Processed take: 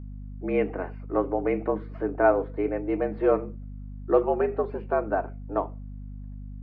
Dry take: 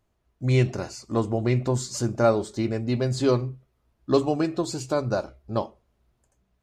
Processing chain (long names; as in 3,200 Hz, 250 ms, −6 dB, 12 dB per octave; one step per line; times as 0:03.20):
single-sideband voice off tune +82 Hz 180–2,200 Hz
mains hum 50 Hz, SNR 11 dB